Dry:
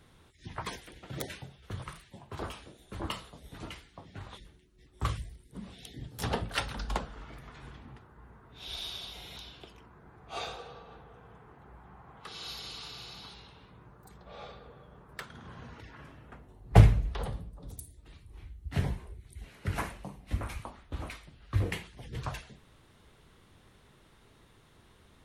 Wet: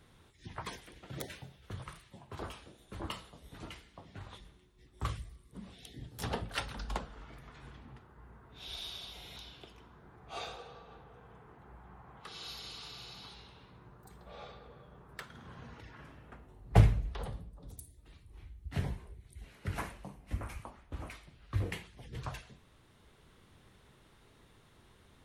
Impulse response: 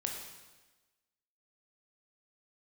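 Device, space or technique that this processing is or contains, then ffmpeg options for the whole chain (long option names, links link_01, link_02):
ducked reverb: -filter_complex "[0:a]asplit=3[link_01][link_02][link_03];[1:a]atrim=start_sample=2205[link_04];[link_02][link_04]afir=irnorm=-1:irlink=0[link_05];[link_03]apad=whole_len=1113107[link_06];[link_05][link_06]sidechaincompress=threshold=-44dB:ratio=8:attack=21:release=1040,volume=-7dB[link_07];[link_01][link_07]amix=inputs=2:normalize=0,asettb=1/sr,asplit=3[link_08][link_09][link_10];[link_08]atrim=end=20.144[link_11];[link_09]atrim=start=20.14:end=21.14,asetpts=PTS-STARTPTS,afade=type=in:duration=0.004:curve=qsin,afade=type=out:start_time=0.996:duration=0.004:curve=qsin,equalizer=frequency=3800:width=2.6:gain=-5.5[link_12];[link_10]atrim=start=21.136[link_13];[link_11][link_12]acrossfade=duration=0.004:curve1=hsin:curve2=qsin[link_14];[link_14][link_13]acrossfade=duration=0.004:curve1=qsin:curve2=hsin,volume=-5dB"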